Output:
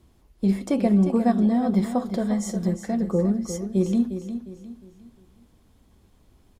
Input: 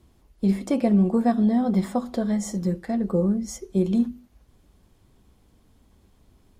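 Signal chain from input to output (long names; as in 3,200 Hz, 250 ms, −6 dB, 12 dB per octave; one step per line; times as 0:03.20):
repeating echo 355 ms, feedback 36%, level −10 dB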